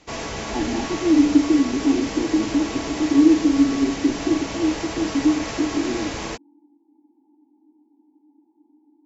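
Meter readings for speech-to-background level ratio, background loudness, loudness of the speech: 9.0 dB, -29.5 LUFS, -20.5 LUFS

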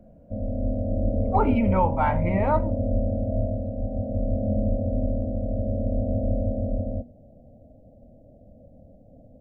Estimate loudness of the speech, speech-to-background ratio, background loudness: -25.0 LUFS, 2.5 dB, -27.5 LUFS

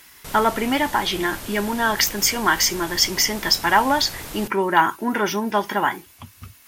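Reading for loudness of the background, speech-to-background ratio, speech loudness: -34.5 LUFS, 14.0 dB, -20.5 LUFS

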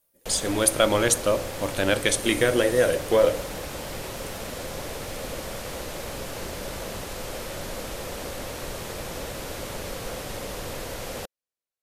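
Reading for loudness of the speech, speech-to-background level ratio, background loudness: -22.5 LUFS, 11.5 dB, -34.0 LUFS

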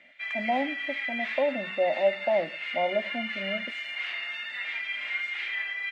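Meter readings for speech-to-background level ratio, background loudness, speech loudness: 2.0 dB, -32.0 LUFS, -30.0 LUFS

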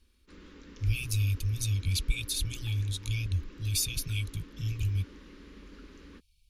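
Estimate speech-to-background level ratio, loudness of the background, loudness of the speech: 19.5 dB, -51.5 LUFS, -32.0 LUFS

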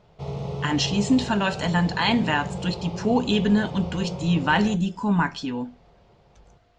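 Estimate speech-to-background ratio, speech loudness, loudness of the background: 10.0 dB, -23.5 LUFS, -33.5 LUFS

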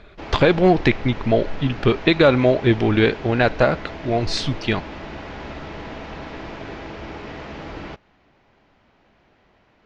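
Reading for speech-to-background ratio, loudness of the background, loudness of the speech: 15.5 dB, -34.5 LUFS, -19.0 LUFS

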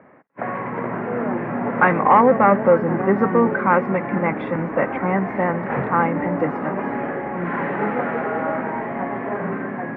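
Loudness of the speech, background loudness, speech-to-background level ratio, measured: -19.5 LUFS, -25.5 LUFS, 6.0 dB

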